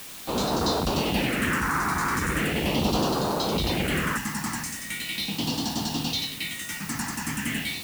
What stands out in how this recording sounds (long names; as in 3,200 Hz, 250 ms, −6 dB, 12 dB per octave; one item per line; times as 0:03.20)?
phaser sweep stages 4, 0.39 Hz, lowest notch 550–2,100 Hz
a quantiser's noise floor 8 bits, dither triangular